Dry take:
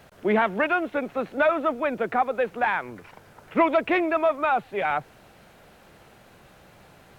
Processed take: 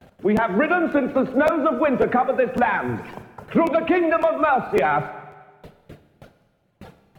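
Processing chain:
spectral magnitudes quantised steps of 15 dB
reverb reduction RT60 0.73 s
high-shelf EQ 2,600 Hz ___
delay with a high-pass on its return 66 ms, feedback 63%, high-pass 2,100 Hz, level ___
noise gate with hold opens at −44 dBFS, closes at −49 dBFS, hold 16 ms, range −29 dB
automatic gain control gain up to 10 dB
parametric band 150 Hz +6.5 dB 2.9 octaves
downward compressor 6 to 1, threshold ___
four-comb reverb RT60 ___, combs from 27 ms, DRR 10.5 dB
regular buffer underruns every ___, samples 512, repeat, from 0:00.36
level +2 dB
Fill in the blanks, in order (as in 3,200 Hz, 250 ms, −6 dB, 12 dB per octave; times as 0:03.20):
−4.5 dB, −17.5 dB, −18 dBFS, 1.4 s, 0.55 s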